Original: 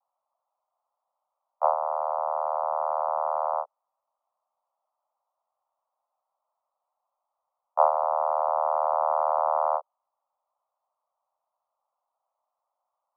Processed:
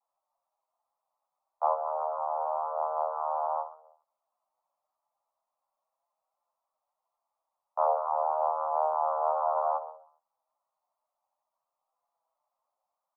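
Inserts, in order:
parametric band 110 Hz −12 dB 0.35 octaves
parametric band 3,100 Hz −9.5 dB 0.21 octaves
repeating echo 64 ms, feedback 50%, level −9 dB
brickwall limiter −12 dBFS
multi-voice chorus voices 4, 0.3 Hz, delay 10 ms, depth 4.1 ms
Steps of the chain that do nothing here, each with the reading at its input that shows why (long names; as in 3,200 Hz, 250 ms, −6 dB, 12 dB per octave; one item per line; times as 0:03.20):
parametric band 110 Hz: nothing at its input below 450 Hz
parametric band 3,100 Hz: nothing at its input above 1,400 Hz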